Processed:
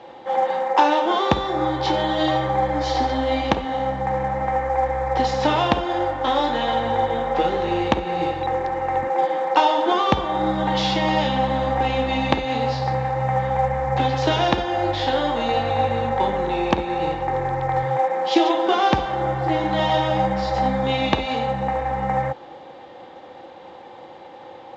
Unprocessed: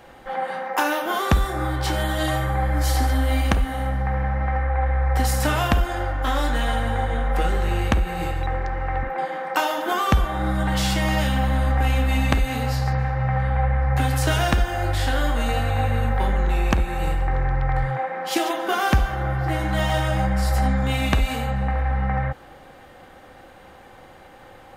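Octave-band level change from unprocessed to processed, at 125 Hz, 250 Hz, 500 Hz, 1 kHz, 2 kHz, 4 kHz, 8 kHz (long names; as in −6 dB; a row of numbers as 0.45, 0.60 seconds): −6.0 dB, +2.5 dB, +6.5 dB, +5.5 dB, −1.5 dB, +3.0 dB, can't be measured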